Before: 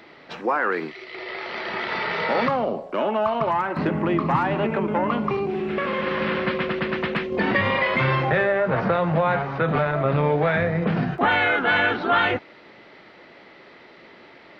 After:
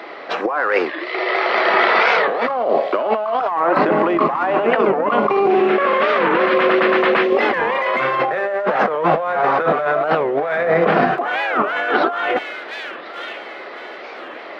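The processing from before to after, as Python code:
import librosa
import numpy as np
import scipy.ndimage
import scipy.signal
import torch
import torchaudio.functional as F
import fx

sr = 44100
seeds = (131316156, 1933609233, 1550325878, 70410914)

p1 = np.clip(10.0 ** (17.5 / 20.0) * x, -1.0, 1.0) / 10.0 ** (17.5 / 20.0)
p2 = x + (p1 * librosa.db_to_amplitude(-6.0))
p3 = scipy.signal.sosfilt(scipy.signal.cheby1(2, 1.0, 390.0, 'highpass', fs=sr, output='sos'), p2)
p4 = fx.peak_eq(p3, sr, hz=880.0, db=8.0, octaves=1.6)
p5 = fx.notch(p4, sr, hz=900.0, q=8.3)
p6 = fx.echo_wet_highpass(p5, sr, ms=1042, feedback_pct=34, hz=3100.0, wet_db=-12.5)
p7 = fx.over_compress(p6, sr, threshold_db=-21.0, ratio=-1.0)
p8 = fx.high_shelf(p7, sr, hz=5000.0, db=-5.5)
p9 = fx.record_warp(p8, sr, rpm=45.0, depth_cents=250.0)
y = p9 * librosa.db_to_amplitude(4.0)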